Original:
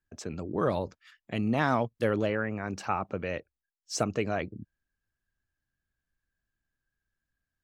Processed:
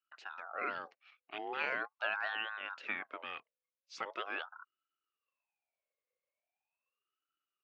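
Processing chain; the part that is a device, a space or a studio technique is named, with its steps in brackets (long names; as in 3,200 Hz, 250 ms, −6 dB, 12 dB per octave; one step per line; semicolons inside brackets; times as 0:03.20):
voice changer toy (ring modulator whose carrier an LFO sweeps 910 Hz, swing 45%, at 0.41 Hz; loudspeaker in its box 450–4,600 Hz, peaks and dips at 970 Hz −7 dB, 1,500 Hz +4 dB, 2,600 Hz +10 dB)
level −7.5 dB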